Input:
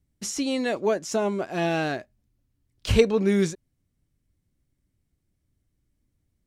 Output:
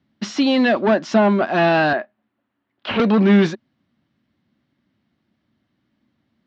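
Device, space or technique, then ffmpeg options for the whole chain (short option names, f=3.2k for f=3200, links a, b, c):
overdrive pedal into a guitar cabinet: -filter_complex "[0:a]asplit=2[a][b];[b]highpass=f=720:p=1,volume=24dB,asoftclip=type=tanh:threshold=-4.5dB[c];[a][c]amix=inputs=2:normalize=0,lowpass=f=2.7k:p=1,volume=-6dB,highpass=100,equalizer=f=220:t=q:w=4:g=10,equalizer=f=450:t=q:w=4:g=-8,equalizer=f=2.3k:t=q:w=4:g=-5,lowpass=f=4.3k:w=0.5412,lowpass=f=4.3k:w=1.3066,asettb=1/sr,asplit=3[d][e][f];[d]atrim=end=1.934[g];[e]atrim=start=1.93:end=3,asetpts=PTS-STARTPTS,afade=t=in:d=0.004:c=qsin,afade=t=out:st=1.066:d=0.004:c=qsin,acrossover=split=310 2800:gain=0.2 1 0.141[h][i][j];[h][i][j]amix=inputs=3:normalize=0[k];[f]atrim=start=2.996[l];[g][k]acrossfade=d=0.004:c1=hsin:c2=qsin[m];[m][l]acrossfade=d=0.004:c1=qsin:c2=hsin"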